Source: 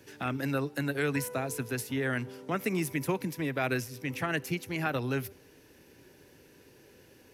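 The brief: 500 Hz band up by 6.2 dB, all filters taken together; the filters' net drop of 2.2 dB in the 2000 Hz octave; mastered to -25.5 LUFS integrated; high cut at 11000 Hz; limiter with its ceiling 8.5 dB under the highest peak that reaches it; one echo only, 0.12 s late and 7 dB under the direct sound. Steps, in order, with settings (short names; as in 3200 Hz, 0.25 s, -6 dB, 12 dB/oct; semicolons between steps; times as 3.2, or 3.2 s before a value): LPF 11000 Hz; bell 500 Hz +8 dB; bell 2000 Hz -3.5 dB; limiter -23 dBFS; echo 0.12 s -7 dB; gain +7 dB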